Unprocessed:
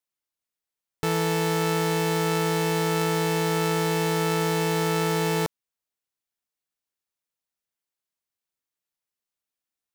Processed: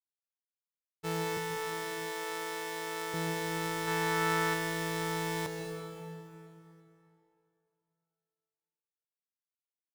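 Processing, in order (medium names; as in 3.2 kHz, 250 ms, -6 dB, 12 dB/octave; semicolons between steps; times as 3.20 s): 1.37–3.14 s: high-pass 340 Hz 12 dB/octave; 3.87–4.54 s: peaking EQ 1.4 kHz +6.5 dB 1.3 oct; expander -19 dBFS; feedback delay 334 ms, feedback 47%, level -19 dB; on a send at -4 dB: reverberation RT60 2.9 s, pre-delay 117 ms; on the sum: trim -5 dB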